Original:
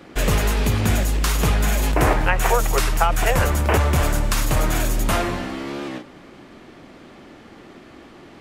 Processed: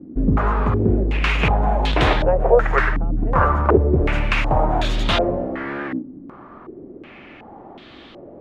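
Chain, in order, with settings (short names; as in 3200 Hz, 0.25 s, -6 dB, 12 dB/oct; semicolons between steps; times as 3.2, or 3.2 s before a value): stepped low-pass 2.7 Hz 270–3600 Hz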